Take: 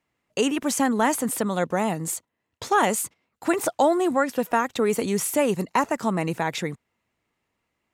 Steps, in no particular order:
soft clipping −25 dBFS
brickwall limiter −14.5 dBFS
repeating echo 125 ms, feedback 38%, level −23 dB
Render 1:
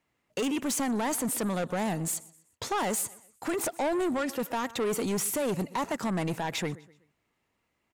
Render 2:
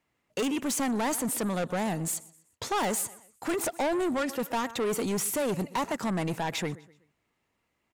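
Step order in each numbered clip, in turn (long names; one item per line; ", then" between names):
brickwall limiter, then repeating echo, then soft clipping
repeating echo, then soft clipping, then brickwall limiter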